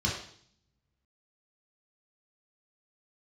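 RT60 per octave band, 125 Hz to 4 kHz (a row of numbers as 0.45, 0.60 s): 0.95, 0.85, 0.60, 0.55, 0.60, 0.65 s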